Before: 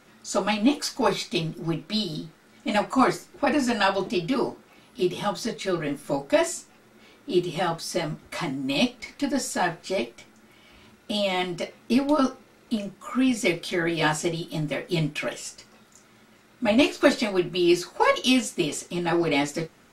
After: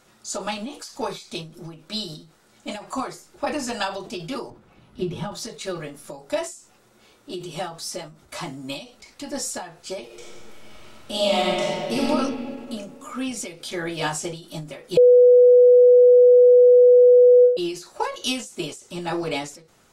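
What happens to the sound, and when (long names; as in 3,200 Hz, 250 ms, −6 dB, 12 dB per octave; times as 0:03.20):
0:04.50–0:05.32: bass and treble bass +12 dB, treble −12 dB
0:10.05–0:12.05: thrown reverb, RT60 2.4 s, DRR −6.5 dB
0:14.97–0:17.57: beep over 493 Hz −7 dBFS
whole clip: octave-band graphic EQ 250/2,000/8,000 Hz −7/−5/+4 dB; every ending faded ahead of time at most 110 dB per second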